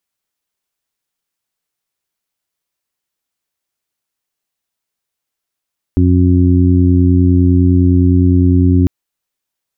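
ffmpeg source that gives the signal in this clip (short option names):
-f lavfi -i "aevalsrc='0.355*sin(2*PI*89.8*t)+0.158*sin(2*PI*179.6*t)+0.266*sin(2*PI*269.4*t)+0.0891*sin(2*PI*359.2*t)':d=2.9:s=44100"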